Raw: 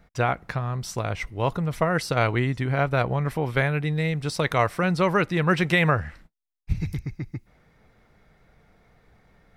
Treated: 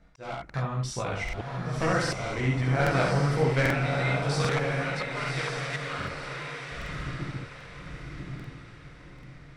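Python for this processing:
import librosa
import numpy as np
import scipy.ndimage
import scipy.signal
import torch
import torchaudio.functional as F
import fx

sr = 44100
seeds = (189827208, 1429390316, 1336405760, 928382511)

y = np.minimum(x, 2.0 * 10.0 ** (-16.5 / 20.0) - x)
y = fx.highpass(y, sr, hz=940.0, slope=12, at=(3.7, 5.99))
y = fx.chorus_voices(y, sr, voices=6, hz=0.39, base_ms=18, depth_ms=3.7, mix_pct=50)
y = scipy.signal.sosfilt(scipy.signal.butter(4, 9400.0, 'lowpass', fs=sr, output='sos'), y)
y = fx.room_early_taps(y, sr, ms=(38, 70), db=(-9.0, -3.5))
y = fx.auto_swell(y, sr, attack_ms=467.0)
y = fx.echo_diffused(y, sr, ms=1095, feedback_pct=40, wet_db=-3)
y = fx.buffer_crackle(y, sr, first_s=0.45, period_s=0.79, block=2048, kind='repeat')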